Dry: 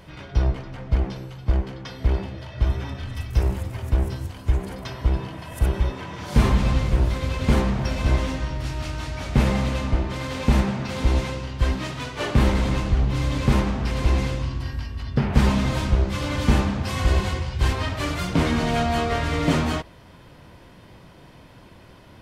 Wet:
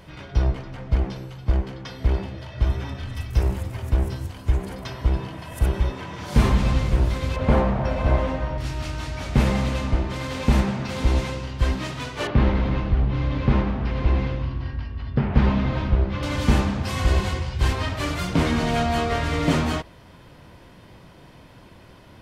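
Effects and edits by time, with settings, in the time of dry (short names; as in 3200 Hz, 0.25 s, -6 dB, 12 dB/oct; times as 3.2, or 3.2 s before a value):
7.36–8.58 EQ curve 390 Hz 0 dB, 580 Hz +8 dB, 2500 Hz -3 dB, 6900 Hz -13 dB
12.27–16.23 air absorption 260 m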